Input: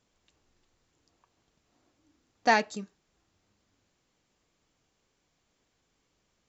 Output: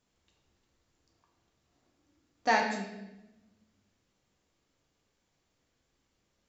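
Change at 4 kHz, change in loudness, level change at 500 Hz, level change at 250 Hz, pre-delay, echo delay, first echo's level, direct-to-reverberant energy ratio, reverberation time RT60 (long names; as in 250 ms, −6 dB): −2.5 dB, −3.5 dB, −3.0 dB, −1.5 dB, 11 ms, no echo audible, no echo audible, 1.0 dB, 0.95 s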